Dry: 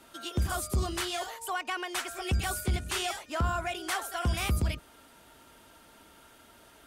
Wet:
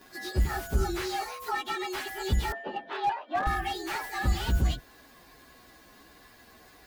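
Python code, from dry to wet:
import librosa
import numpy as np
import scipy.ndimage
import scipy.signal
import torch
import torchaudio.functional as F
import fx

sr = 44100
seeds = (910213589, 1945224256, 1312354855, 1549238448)

y = fx.partial_stretch(x, sr, pct=112)
y = fx.cabinet(y, sr, low_hz=280.0, low_slope=24, high_hz=2700.0, hz=(370.0, 580.0, 880.0, 2200.0), db=(-5, 9, 7, -8), at=(2.52, 3.47))
y = fx.slew_limit(y, sr, full_power_hz=34.0)
y = y * librosa.db_to_amplitude(5.5)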